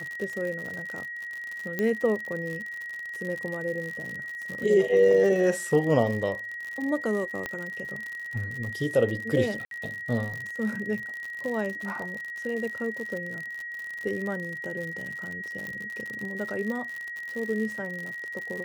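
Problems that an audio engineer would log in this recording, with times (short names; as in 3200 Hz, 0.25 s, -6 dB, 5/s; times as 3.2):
crackle 80/s -32 dBFS
tone 1900 Hz -34 dBFS
1.79 pop -15 dBFS
7.46 pop -17 dBFS
9.65–9.71 gap 62 ms
15.67 pop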